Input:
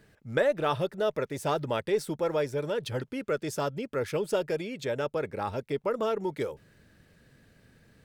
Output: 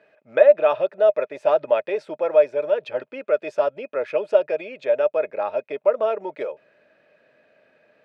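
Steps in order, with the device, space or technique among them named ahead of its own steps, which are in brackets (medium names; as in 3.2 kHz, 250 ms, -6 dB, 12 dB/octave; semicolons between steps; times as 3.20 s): tin-can telephone (band-pass 440–2500 Hz; small resonant body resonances 610/2500 Hz, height 15 dB, ringing for 40 ms); trim +3 dB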